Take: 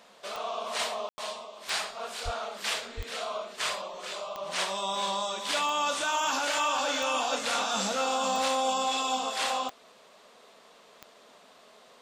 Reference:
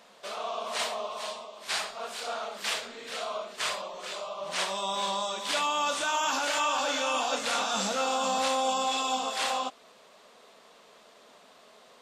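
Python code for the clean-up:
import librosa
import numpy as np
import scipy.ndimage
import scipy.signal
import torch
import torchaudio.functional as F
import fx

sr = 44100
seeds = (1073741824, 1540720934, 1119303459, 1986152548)

y = fx.fix_declip(x, sr, threshold_db=-20.0)
y = fx.fix_declick_ar(y, sr, threshold=10.0)
y = fx.highpass(y, sr, hz=140.0, slope=24, at=(2.24, 2.36), fade=0.02)
y = fx.highpass(y, sr, hz=140.0, slope=24, at=(2.96, 3.08), fade=0.02)
y = fx.fix_ambience(y, sr, seeds[0], print_start_s=9.74, print_end_s=10.24, start_s=1.09, end_s=1.18)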